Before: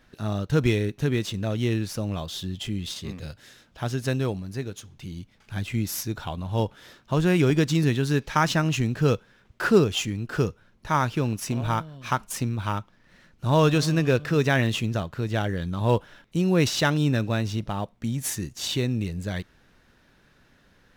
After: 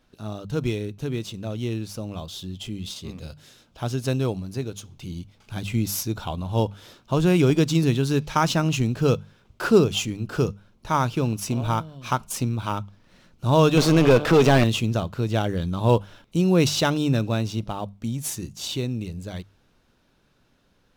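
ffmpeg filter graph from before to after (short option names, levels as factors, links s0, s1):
-filter_complex "[0:a]asettb=1/sr,asplit=3[s0][s1][s2];[s0]atrim=end=13.774[s3];[s1]atrim=start=13.77:end=14.64,asetpts=PTS-STARTPTS,afade=t=in:d=0.004:c=qsin,afade=t=out:st=0.866:d=0.004:c=qsin,aeval=exprs='if(lt(val(0),0),0.251*val(0),val(0))':c=same,highshelf=f=8500:g=10.5,asplit=2[s4][s5];[s5]highpass=f=720:p=1,volume=28.2,asoftclip=type=tanh:threshold=0.376[s6];[s4][s6]amix=inputs=2:normalize=0,lowpass=f=1300:p=1,volume=0.501[s7];[s2]atrim=start=14.636[s8];[s3][s7]acrossfade=d=0.004:c1=hsin:c2=qsin[s9];[s9][s8]acrossfade=d=0.004:c1=qsin:c2=hsin,equalizer=f=1800:t=o:w=0.5:g=-9,bandreject=f=50:t=h:w=6,bandreject=f=100:t=h:w=6,bandreject=f=150:t=h:w=6,bandreject=f=200:t=h:w=6,dynaudnorm=f=450:g=17:m=3.76,volume=0.668"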